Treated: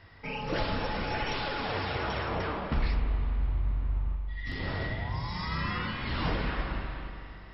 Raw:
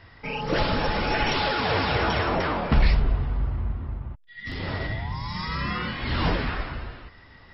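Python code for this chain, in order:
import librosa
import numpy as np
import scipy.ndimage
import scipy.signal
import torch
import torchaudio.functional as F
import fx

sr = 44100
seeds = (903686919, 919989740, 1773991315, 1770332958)

y = fx.rev_spring(x, sr, rt60_s=2.9, pass_ms=(31, 42), chirp_ms=40, drr_db=5.0)
y = fx.rider(y, sr, range_db=3, speed_s=0.5)
y = y * librosa.db_to_amplitude(-7.5)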